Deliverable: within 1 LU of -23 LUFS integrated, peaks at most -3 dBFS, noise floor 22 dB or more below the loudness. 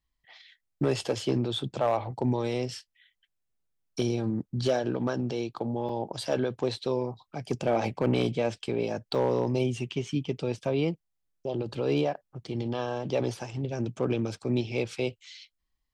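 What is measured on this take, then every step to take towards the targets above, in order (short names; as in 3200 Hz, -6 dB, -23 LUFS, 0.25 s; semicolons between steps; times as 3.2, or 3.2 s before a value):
clipped 0.2%; flat tops at -17.5 dBFS; dropouts 2; longest dropout 2.7 ms; loudness -30.0 LUFS; peak -17.5 dBFS; loudness target -23.0 LUFS
-> clip repair -17.5 dBFS; interpolate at 5.89/9.15, 2.7 ms; gain +7 dB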